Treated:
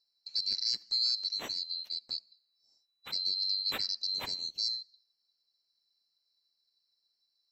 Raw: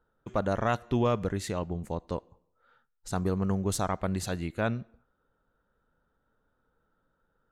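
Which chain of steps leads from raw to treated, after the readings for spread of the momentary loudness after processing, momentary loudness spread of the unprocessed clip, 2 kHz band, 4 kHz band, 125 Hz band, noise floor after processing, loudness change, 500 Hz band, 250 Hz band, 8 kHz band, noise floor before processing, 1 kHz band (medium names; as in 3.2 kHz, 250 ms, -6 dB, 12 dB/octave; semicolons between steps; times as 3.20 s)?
8 LU, 9 LU, -9.5 dB, +17.5 dB, under -30 dB, -80 dBFS, -0.5 dB, -24.5 dB, -27.0 dB, -7.0 dB, -76 dBFS, -18.0 dB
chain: split-band scrambler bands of 4 kHz; low-pass 2.1 kHz 6 dB/octave; bass shelf 120 Hz -8.5 dB; trim +2.5 dB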